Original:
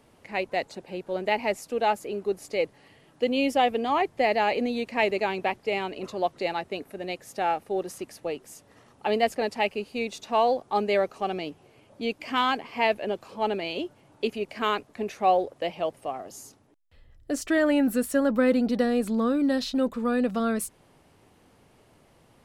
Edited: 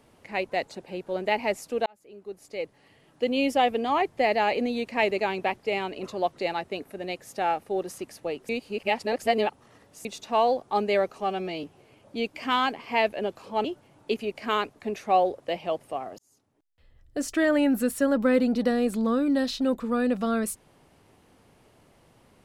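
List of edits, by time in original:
1.86–3.4 fade in
8.49–10.05 reverse
11.2–11.49 stretch 1.5×
13.5–13.78 cut
16.32–17.39 fade in linear

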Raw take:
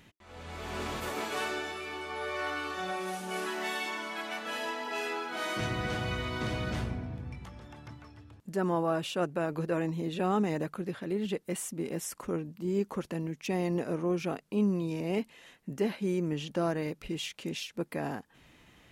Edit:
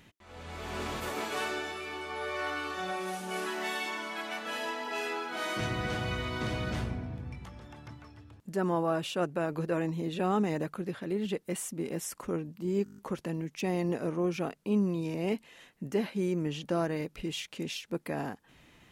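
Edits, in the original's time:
12.84 stutter 0.02 s, 8 plays

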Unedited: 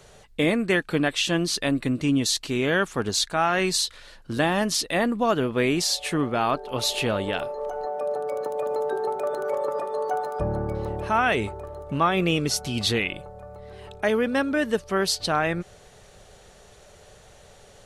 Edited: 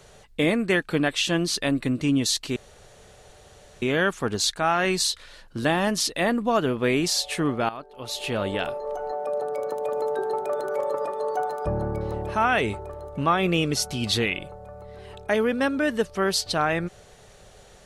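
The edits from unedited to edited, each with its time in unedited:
2.56 insert room tone 1.26 s
6.43–7.21 fade in quadratic, from -14 dB

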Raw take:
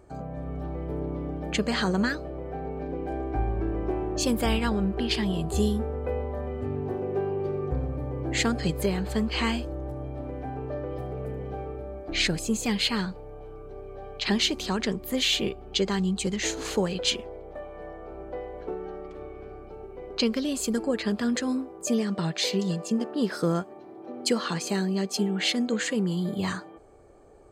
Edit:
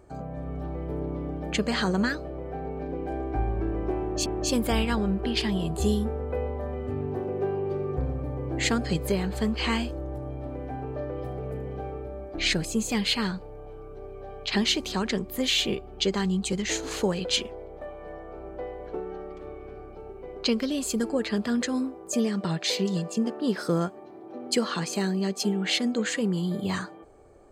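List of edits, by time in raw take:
4–4.26 loop, 2 plays

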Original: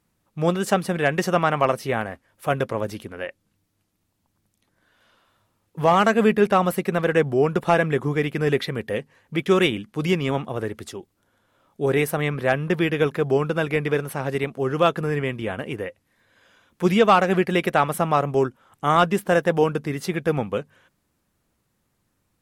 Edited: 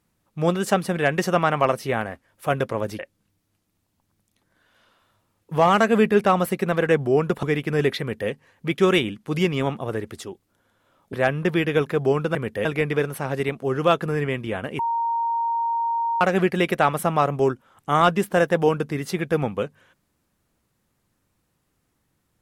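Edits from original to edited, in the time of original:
2.99–3.25 cut
7.69–8.11 cut
8.68–8.98 copy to 13.6
11.81–12.38 cut
15.74–17.16 bleep 928 Hz -20.5 dBFS

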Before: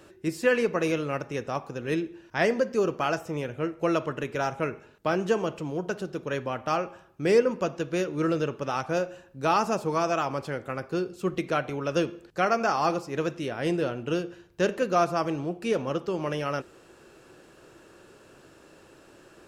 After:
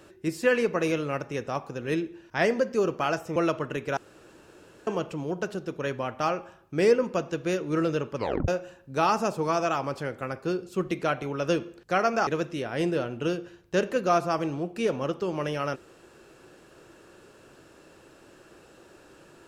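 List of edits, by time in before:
3.36–3.83 cut
4.44–5.34 room tone
8.63 tape stop 0.32 s
12.74–13.13 cut

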